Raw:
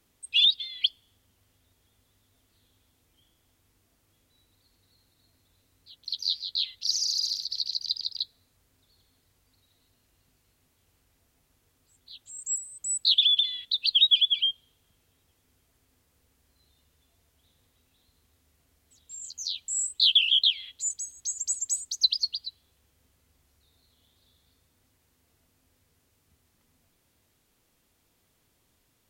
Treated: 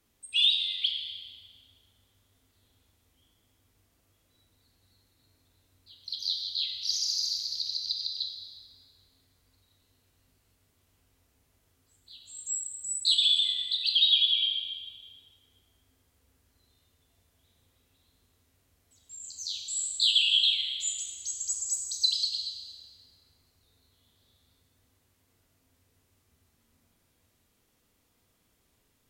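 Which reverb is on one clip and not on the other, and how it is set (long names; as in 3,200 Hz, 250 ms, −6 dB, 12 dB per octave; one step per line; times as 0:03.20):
dense smooth reverb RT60 2.1 s, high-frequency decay 0.75×, pre-delay 0 ms, DRR 0.5 dB
level −4 dB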